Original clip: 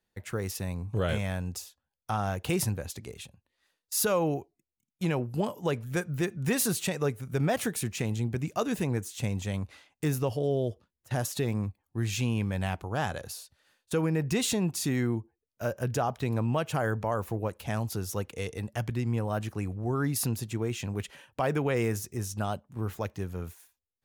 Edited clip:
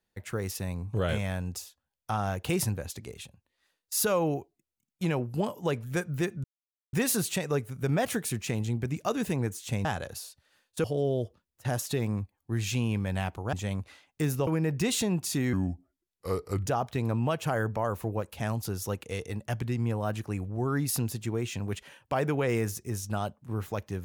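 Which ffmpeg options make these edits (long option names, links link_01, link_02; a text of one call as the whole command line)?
ffmpeg -i in.wav -filter_complex "[0:a]asplit=8[link_01][link_02][link_03][link_04][link_05][link_06][link_07][link_08];[link_01]atrim=end=6.44,asetpts=PTS-STARTPTS,afade=type=out:start_time=6.436:duration=0.004:curve=hsin,apad=pad_dur=0.49[link_09];[link_02]atrim=start=6.44:end=9.362,asetpts=PTS-STARTPTS,afade=type=in:duration=0.004:curve=hsin[link_10];[link_03]atrim=start=12.988:end=13.982[link_11];[link_04]atrim=start=10.298:end=12.992[link_12];[link_05]atrim=start=9.358:end=10.302[link_13];[link_06]atrim=start=13.978:end=15.044[link_14];[link_07]atrim=start=15.04:end=15.93,asetpts=PTS-STARTPTS,asetrate=34839,aresample=44100,atrim=end_sample=49682,asetpts=PTS-STARTPTS[link_15];[link_08]atrim=start=15.926[link_16];[link_09][link_10]concat=n=2:v=0:a=1[link_17];[link_17][link_11]acrossfade=duration=0.004:curve1=hsin:curve2=hsin[link_18];[link_18][link_12]acrossfade=duration=0.004:curve1=hsin:curve2=hsin[link_19];[link_19][link_13]acrossfade=duration=0.004:curve1=hsin:curve2=hsin[link_20];[link_20][link_14]acrossfade=duration=0.004:curve1=hsin:curve2=hsin[link_21];[link_21][link_15]acrossfade=duration=0.004:curve1=hsin:curve2=hsin[link_22];[link_22][link_16]acrossfade=duration=0.004:curve1=hsin:curve2=hsin" out.wav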